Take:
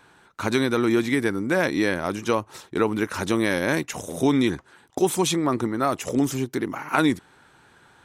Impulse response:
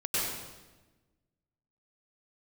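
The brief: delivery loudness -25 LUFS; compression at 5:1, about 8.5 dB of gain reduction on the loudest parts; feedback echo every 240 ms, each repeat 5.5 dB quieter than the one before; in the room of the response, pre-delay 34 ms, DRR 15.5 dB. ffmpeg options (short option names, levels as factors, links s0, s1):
-filter_complex "[0:a]acompressor=threshold=0.0562:ratio=5,aecho=1:1:240|480|720|960|1200|1440|1680:0.531|0.281|0.149|0.079|0.0419|0.0222|0.0118,asplit=2[s0][s1];[1:a]atrim=start_sample=2205,adelay=34[s2];[s1][s2]afir=irnorm=-1:irlink=0,volume=0.0631[s3];[s0][s3]amix=inputs=2:normalize=0,volume=1.5"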